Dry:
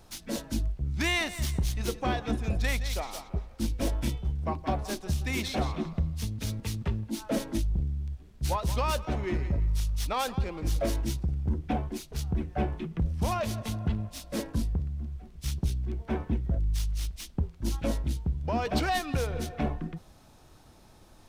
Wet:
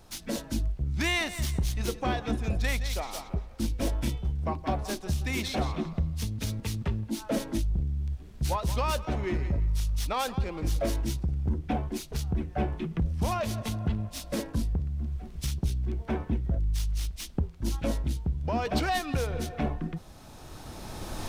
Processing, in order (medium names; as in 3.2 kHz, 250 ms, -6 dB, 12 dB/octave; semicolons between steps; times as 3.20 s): recorder AGC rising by 13 dB/s